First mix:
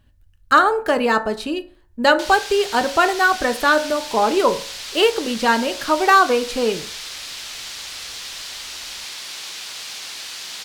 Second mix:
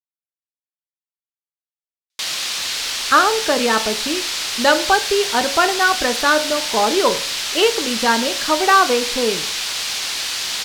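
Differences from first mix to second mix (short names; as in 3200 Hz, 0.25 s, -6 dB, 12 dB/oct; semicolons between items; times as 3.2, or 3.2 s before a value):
speech: entry +2.60 s; background +9.0 dB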